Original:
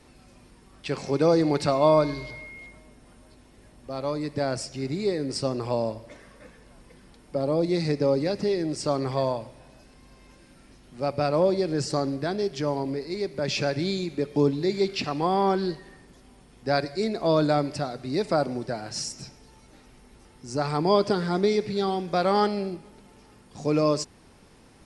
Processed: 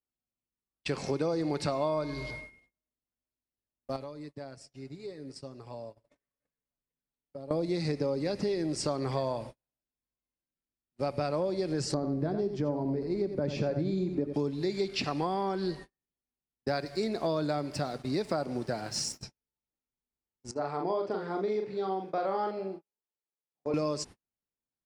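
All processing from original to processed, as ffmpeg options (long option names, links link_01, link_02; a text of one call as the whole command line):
ffmpeg -i in.wav -filter_complex "[0:a]asettb=1/sr,asplit=3[link_01][link_02][link_03];[link_01]atrim=end=3.964[link_04];[link_02]atrim=start=3.96:end=7.51,asetpts=PTS-STARTPTS,afade=type=in:duration=0.004:curve=qsin,afade=type=out:start_time=3.546:duration=0.004:curve=qsin,aecho=1:1:7.1:0.4,atrim=end_sample=156555,acompressor=threshold=-39dB:ratio=5:attack=3.2:release=140:knee=1:detection=peak[link_05];[link_03]atrim=start=7.506[link_06];[link_04][link_05]acrossfade=duration=0.004:curve1=hsin:curve2=qsin[link_07];[link_07][link_06]acrossfade=duration=0.004:curve1=qsin:curve2=hsin,asettb=1/sr,asplit=3[link_08][link_09][link_10];[link_08]atrim=end=11.944[link_11];[link_09]atrim=start=11.94:end=14.34,asetpts=PTS-STARTPTS,afade=type=in:duration=0.004:curve=qsin,afade=type=out:start_time=2.396:duration=0.004:curve=qsin,tiltshelf=frequency=1200:gain=9.5,flanger=delay=3.3:depth=3.7:regen=73:speed=1.3:shape=triangular,aecho=1:1:88:0.355,atrim=end_sample=105840[link_12];[link_10]atrim=start=14.336[link_13];[link_11][link_12]acrossfade=duration=0.004:curve1=hsin:curve2=qsin[link_14];[link_14][link_13]acrossfade=duration=0.004:curve1=qsin:curve2=hsin,asettb=1/sr,asplit=3[link_15][link_16][link_17];[link_15]atrim=end=16.684[link_18];[link_16]atrim=start=16.68:end=19.23,asetpts=PTS-STARTPTS,afade=type=in:duration=0.004:curve=qsin,afade=type=out:start_time=2.546:duration=0.004:curve=qsin,highpass=frequency=45:width=0.5412,highpass=frequency=45:width=1.3066,aeval=exprs='sgn(val(0))*max(abs(val(0))-0.00266,0)':channel_layout=same[link_19];[link_17]atrim=start=19.226[link_20];[link_18][link_19]acrossfade=duration=0.004:curve1=hsin:curve2=qsin[link_21];[link_21][link_20]acrossfade=duration=0.004:curve1=qsin:curve2=hsin,asettb=1/sr,asplit=3[link_22][link_23][link_24];[link_22]atrim=end=20.514[link_25];[link_23]atrim=start=20.51:end=23.74,asetpts=PTS-STARTPTS,afade=type=in:duration=0.004:curve=qsin,afade=type=out:start_time=3.226:duration=0.004:curve=qsin,bandpass=frequency=420:width_type=q:width=0.68,lowshelf=frequency=460:gain=-11.5,asplit=2[link_26][link_27];[link_27]adelay=42,volume=-3.5dB[link_28];[link_26][link_28]amix=inputs=2:normalize=0,atrim=end_sample=142443[link_29];[link_24]atrim=start=23.736[link_30];[link_25][link_29]acrossfade=duration=0.004:curve1=hsin:curve2=qsin[link_31];[link_31][link_30]acrossfade=duration=0.004:curve1=qsin:curve2=hsin,agate=range=-46dB:threshold=-40dB:ratio=16:detection=peak,acompressor=threshold=-27dB:ratio=6" out.wav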